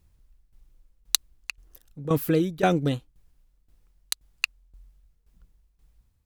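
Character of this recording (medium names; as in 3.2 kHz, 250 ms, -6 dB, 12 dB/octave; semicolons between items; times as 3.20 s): tremolo saw down 1.9 Hz, depth 80%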